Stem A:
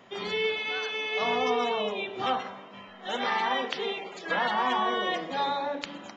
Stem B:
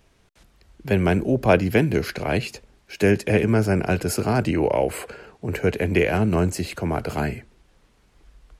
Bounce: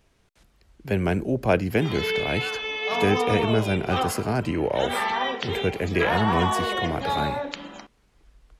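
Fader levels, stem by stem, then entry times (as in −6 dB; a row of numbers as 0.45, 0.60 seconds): +2.0, −4.0 decibels; 1.70, 0.00 seconds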